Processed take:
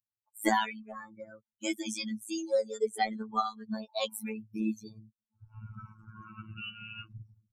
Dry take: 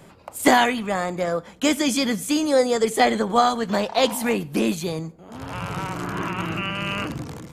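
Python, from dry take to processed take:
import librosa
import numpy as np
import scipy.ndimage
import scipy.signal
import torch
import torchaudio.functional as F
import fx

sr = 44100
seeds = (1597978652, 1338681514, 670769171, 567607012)

y = fx.bin_expand(x, sr, power=3.0)
y = fx.robotise(y, sr, hz=109.0)
y = y * 10.0 ** (-4.0 / 20.0)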